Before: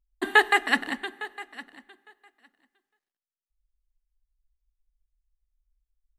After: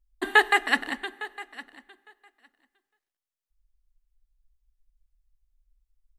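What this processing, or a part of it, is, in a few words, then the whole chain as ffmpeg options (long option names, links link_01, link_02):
low shelf boost with a cut just above: -af "lowshelf=frequency=64:gain=8,equalizer=frequency=180:width_type=o:width=1.1:gain=-6"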